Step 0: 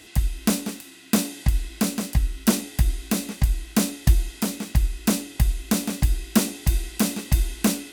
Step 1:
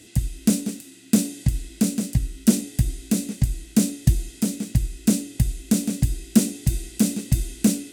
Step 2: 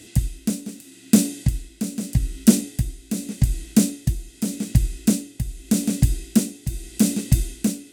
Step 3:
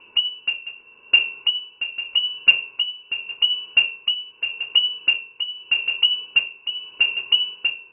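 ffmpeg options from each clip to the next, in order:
-af "equalizer=f=125:t=o:w=1:g=10,equalizer=f=250:t=o:w=1:g=7,equalizer=f=500:t=o:w=1:g=4,equalizer=f=1k:t=o:w=1:g=-9,equalizer=f=8k:t=o:w=1:g=8,volume=-5.5dB"
-af "tremolo=f=0.83:d=0.67,volume=3.5dB"
-af "lowpass=f=2.6k:t=q:w=0.5098,lowpass=f=2.6k:t=q:w=0.6013,lowpass=f=2.6k:t=q:w=0.9,lowpass=f=2.6k:t=q:w=2.563,afreqshift=-3000,volume=-1dB"

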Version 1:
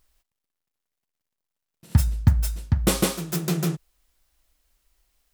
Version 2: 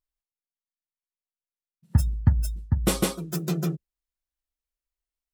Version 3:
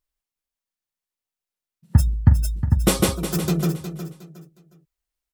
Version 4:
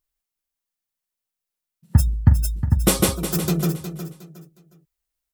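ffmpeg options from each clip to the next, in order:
-af "afftdn=nr=22:nf=-36,volume=-2dB"
-af "aecho=1:1:362|724|1086:0.299|0.0836|0.0234,volume=5dB"
-af "crystalizer=i=0.5:c=0"

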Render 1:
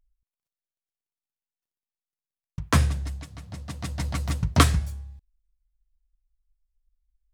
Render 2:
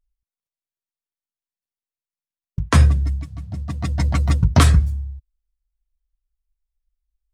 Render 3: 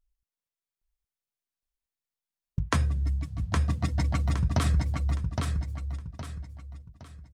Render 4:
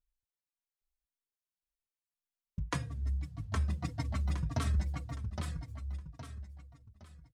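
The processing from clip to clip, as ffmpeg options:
-af "afftdn=nr=13:nf=-38,equalizer=f=66:t=o:w=1.3:g=3,alimiter=level_in=9.5dB:limit=-1dB:release=50:level=0:latency=1,volume=-1.5dB"
-af "acompressor=threshold=-21dB:ratio=6,aecho=1:1:815|1630|2445|3260:0.631|0.221|0.0773|0.0271,volume=-2dB"
-filter_complex "[0:a]asplit=2[a][b];[b]adelay=3.7,afreqshift=-1.8[c];[a][c]amix=inputs=2:normalize=1,volume=-5dB"

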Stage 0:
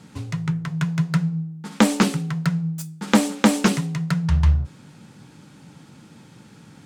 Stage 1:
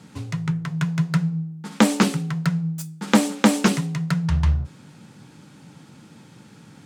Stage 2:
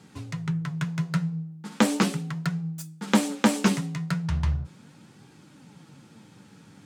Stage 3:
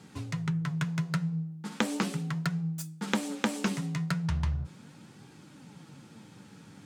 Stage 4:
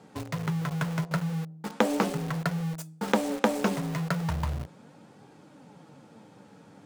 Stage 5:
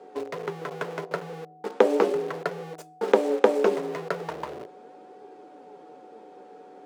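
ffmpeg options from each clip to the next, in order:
-af "highpass=72"
-af "flanger=delay=2.5:depth=8.3:regen=60:speed=0.38:shape=sinusoidal"
-af "acompressor=threshold=-26dB:ratio=5"
-filter_complex "[0:a]equalizer=f=590:w=0.64:g=14,bandreject=f=360:w=12,asplit=2[a][b];[b]acrusher=bits=4:mix=0:aa=0.000001,volume=-4.5dB[c];[a][c]amix=inputs=2:normalize=0,volume=-6.5dB"
-af "aeval=exprs='val(0)+0.00251*sin(2*PI*740*n/s)':c=same,highpass=f=400:t=q:w=4.9,highshelf=f=6.1k:g=-11.5"

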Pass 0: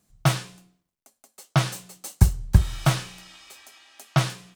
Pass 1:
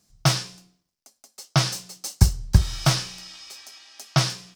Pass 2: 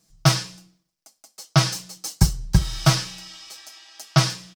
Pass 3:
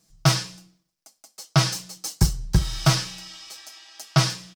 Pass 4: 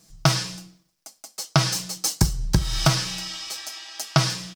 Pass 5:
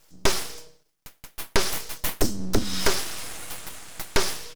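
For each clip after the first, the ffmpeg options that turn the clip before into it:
-af "equalizer=f=5.2k:w=1.9:g=12"
-af "aecho=1:1:6.2:0.65"
-af "asoftclip=type=tanh:threshold=-7dB"
-af "acompressor=threshold=-25dB:ratio=4,volume=8dB"
-af "afreqshift=57,aeval=exprs='abs(val(0))':c=same"

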